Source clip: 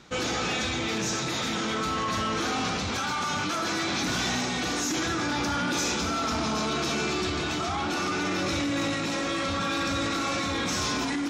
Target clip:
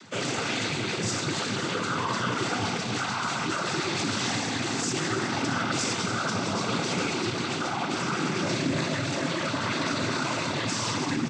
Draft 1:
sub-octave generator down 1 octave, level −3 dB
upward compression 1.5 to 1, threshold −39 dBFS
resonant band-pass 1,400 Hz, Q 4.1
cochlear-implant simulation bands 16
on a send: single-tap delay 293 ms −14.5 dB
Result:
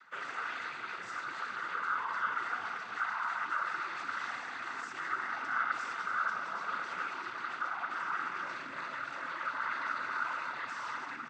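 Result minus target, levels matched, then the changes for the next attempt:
1,000 Hz band +4.5 dB
remove: resonant band-pass 1,400 Hz, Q 4.1

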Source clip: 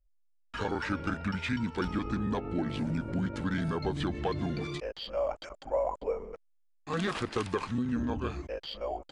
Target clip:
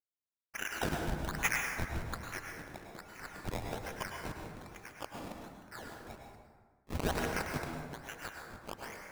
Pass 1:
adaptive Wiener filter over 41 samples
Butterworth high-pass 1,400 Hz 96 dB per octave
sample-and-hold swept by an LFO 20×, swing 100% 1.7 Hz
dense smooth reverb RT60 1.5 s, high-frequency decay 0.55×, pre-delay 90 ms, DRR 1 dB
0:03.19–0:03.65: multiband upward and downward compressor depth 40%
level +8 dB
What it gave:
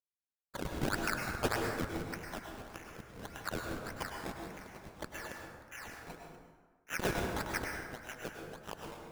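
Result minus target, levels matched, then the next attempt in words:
sample-and-hold swept by an LFO: distortion +16 dB
adaptive Wiener filter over 41 samples
Butterworth high-pass 1,400 Hz 96 dB per octave
sample-and-hold swept by an LFO 20×, swing 100% 1.2 Hz
dense smooth reverb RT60 1.5 s, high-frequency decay 0.55×, pre-delay 90 ms, DRR 1 dB
0:03.19–0:03.65: multiband upward and downward compressor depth 40%
level +8 dB

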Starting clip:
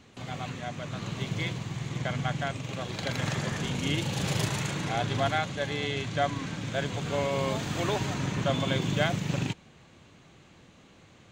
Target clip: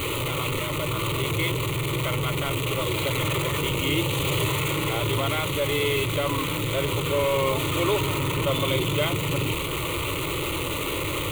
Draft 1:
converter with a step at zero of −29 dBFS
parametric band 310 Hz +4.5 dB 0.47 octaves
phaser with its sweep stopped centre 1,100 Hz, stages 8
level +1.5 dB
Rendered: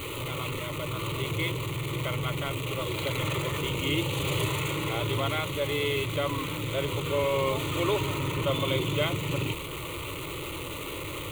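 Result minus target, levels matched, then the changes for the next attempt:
converter with a step at zero: distortion −5 dB
change: converter with a step at zero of −20.5 dBFS

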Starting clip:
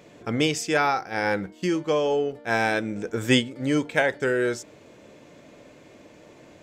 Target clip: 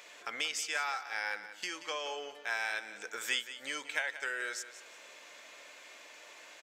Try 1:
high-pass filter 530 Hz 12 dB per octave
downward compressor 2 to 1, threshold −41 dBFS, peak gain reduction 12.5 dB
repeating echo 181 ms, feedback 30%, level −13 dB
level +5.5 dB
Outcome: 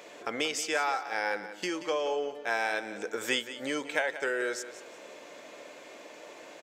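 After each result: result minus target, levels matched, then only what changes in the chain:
500 Hz band +8.5 dB; downward compressor: peak gain reduction −2.5 dB
change: high-pass filter 1,300 Hz 12 dB per octave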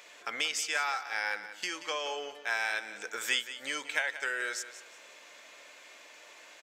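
downward compressor: peak gain reduction −3 dB
change: downward compressor 2 to 1, threshold −47.5 dBFS, peak gain reduction 15 dB

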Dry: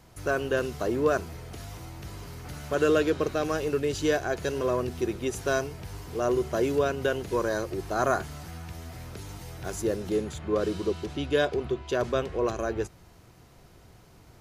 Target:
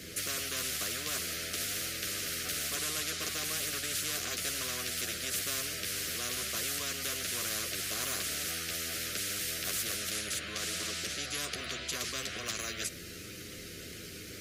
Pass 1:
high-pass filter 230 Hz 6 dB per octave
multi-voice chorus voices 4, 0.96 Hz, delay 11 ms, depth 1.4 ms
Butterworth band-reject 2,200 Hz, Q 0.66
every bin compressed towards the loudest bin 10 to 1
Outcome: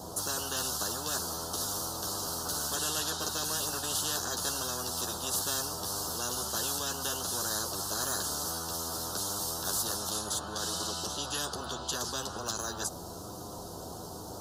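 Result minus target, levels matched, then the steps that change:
1,000 Hz band +7.0 dB
change: Butterworth band-reject 880 Hz, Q 0.66

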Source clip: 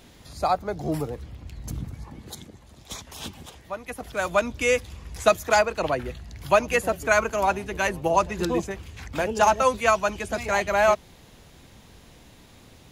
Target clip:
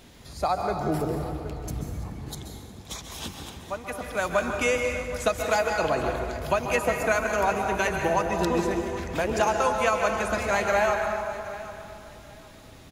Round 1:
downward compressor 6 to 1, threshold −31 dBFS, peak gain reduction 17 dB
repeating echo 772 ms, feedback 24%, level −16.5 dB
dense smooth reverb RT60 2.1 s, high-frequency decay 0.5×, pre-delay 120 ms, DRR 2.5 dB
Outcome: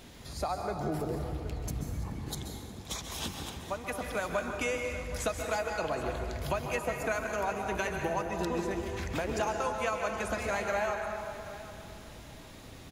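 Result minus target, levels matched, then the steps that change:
downward compressor: peak gain reduction +9 dB
change: downward compressor 6 to 1, threshold −20.5 dBFS, peak gain reduction 8.5 dB

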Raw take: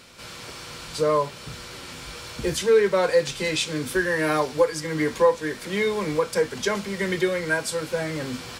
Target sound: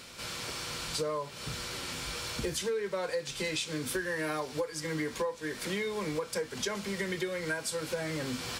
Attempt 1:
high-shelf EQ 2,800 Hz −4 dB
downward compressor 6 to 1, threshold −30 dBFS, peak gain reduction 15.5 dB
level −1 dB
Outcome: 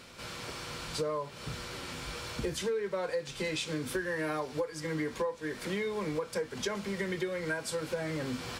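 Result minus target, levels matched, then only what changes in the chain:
4,000 Hz band −2.5 dB
change: high-shelf EQ 2,800 Hz +3.5 dB

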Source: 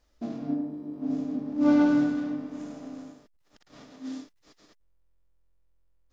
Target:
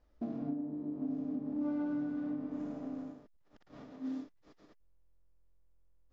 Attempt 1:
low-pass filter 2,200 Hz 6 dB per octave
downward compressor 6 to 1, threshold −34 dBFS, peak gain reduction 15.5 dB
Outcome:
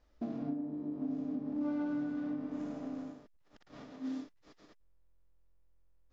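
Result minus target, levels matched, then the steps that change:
2,000 Hz band +3.0 dB
change: low-pass filter 1,000 Hz 6 dB per octave

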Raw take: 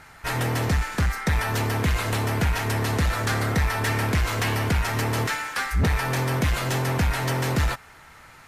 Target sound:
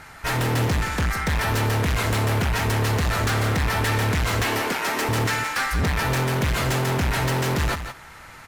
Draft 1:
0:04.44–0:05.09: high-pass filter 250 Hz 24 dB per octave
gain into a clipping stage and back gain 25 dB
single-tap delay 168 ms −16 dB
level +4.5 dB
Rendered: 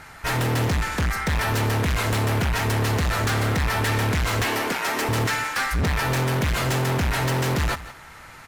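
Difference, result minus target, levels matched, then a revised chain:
echo-to-direct −6.5 dB
0:04.44–0:05.09: high-pass filter 250 Hz 24 dB per octave
gain into a clipping stage and back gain 25 dB
single-tap delay 168 ms −9.5 dB
level +4.5 dB

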